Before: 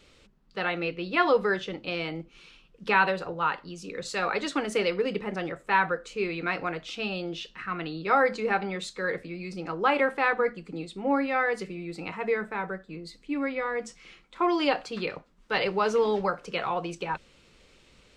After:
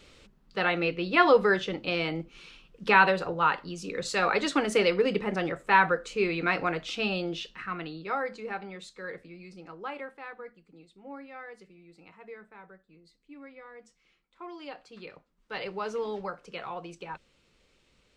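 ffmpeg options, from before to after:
ffmpeg -i in.wav -af "volume=12dB,afade=type=out:start_time=7.1:duration=1.1:silence=0.251189,afade=type=out:start_time=9.36:duration=0.83:silence=0.375837,afade=type=in:start_time=14.63:duration=1.11:silence=0.334965" out.wav

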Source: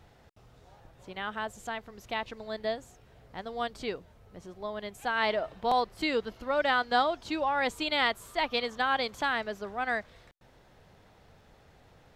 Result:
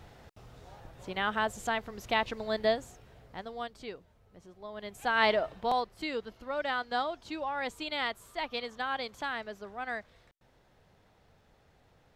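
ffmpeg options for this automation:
ffmpeg -i in.wav -af "volume=15.5dB,afade=type=out:start_time=2.64:duration=1.07:silence=0.237137,afade=type=in:start_time=4.68:duration=0.56:silence=0.298538,afade=type=out:start_time=5.24:duration=0.66:silence=0.354813" out.wav

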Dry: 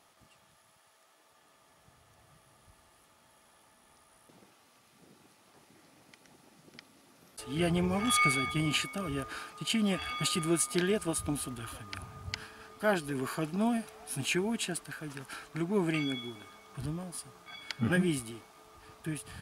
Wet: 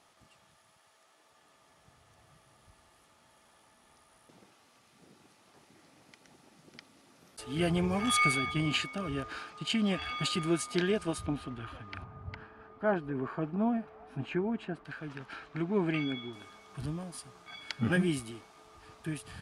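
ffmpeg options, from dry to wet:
ffmpeg -i in.wav -af "asetnsamples=nb_out_samples=441:pad=0,asendcmd='8.38 lowpass f 5900;11.26 lowpass f 2800;12.04 lowpass f 1400;14.85 lowpass f 3400;16.33 lowpass f 8700',lowpass=10000" out.wav

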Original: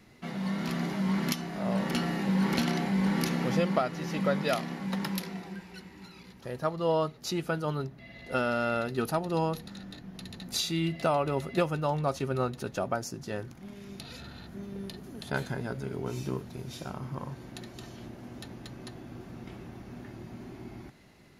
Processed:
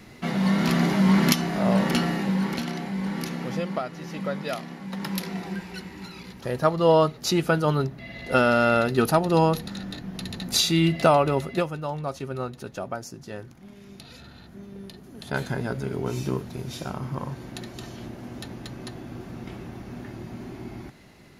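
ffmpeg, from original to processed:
ffmpeg -i in.wav -af "volume=28.5dB,afade=type=out:start_time=1.48:duration=1.11:silence=0.251189,afade=type=in:start_time=4.93:duration=0.61:silence=0.281838,afade=type=out:start_time=11.09:duration=0.64:silence=0.298538,afade=type=in:start_time=15.1:duration=0.46:silence=0.421697" out.wav

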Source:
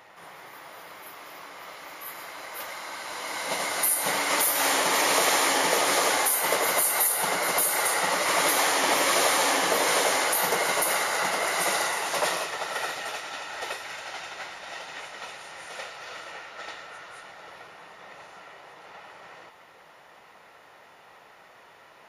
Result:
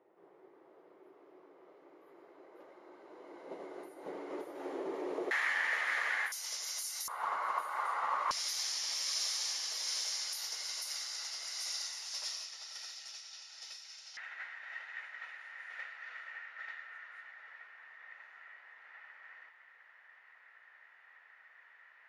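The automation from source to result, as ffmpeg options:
ffmpeg -i in.wav -af "asetnsamples=nb_out_samples=441:pad=0,asendcmd='5.31 bandpass f 1800;6.32 bandpass f 5600;7.08 bandpass f 1100;8.31 bandpass f 5300;14.17 bandpass f 1800',bandpass=frequency=370:width_type=q:width=5.2:csg=0" out.wav

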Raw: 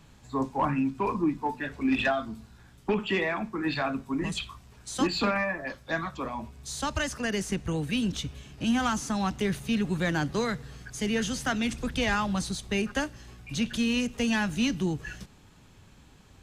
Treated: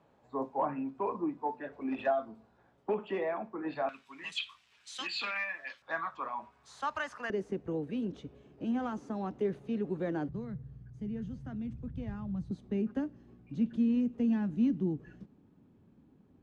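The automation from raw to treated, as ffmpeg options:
ffmpeg -i in.wav -af "asetnsamples=nb_out_samples=441:pad=0,asendcmd='3.89 bandpass f 2800;5.82 bandpass f 1100;7.3 bandpass f 410;10.29 bandpass f 110;12.51 bandpass f 260',bandpass=frequency=590:width_type=q:width=1.6:csg=0" out.wav

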